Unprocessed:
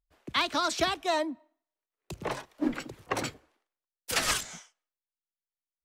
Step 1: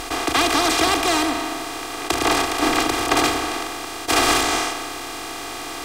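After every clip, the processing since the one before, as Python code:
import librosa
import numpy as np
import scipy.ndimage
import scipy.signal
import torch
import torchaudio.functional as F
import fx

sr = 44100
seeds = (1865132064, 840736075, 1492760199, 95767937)

y = fx.bin_compress(x, sr, power=0.2)
y = y + 0.95 * np.pad(y, (int(2.5 * sr / 1000.0), 0))[:len(y)]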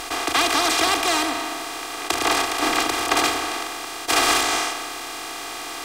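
y = fx.low_shelf(x, sr, hz=370.0, db=-9.0)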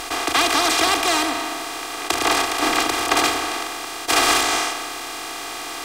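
y = fx.dmg_crackle(x, sr, seeds[0], per_s=12.0, level_db=-42.0)
y = F.gain(torch.from_numpy(y), 1.5).numpy()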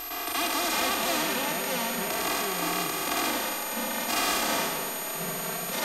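y = x + 10.0 ** (-29.0 / 20.0) * np.sin(2.0 * np.pi * 12000.0 * np.arange(len(x)) / sr)
y = fx.echo_pitch(y, sr, ms=265, semitones=-5, count=2, db_per_echo=-3.0)
y = fx.hpss(y, sr, part='percussive', gain_db=-15)
y = F.gain(torch.from_numpy(y), -7.0).numpy()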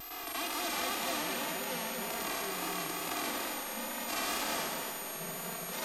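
y = fx.wow_flutter(x, sr, seeds[1], rate_hz=2.1, depth_cents=57.0)
y = y + 10.0 ** (-6.0 / 20.0) * np.pad(y, (int(235 * sr / 1000.0), 0))[:len(y)]
y = F.gain(torch.from_numpy(y), -8.5).numpy()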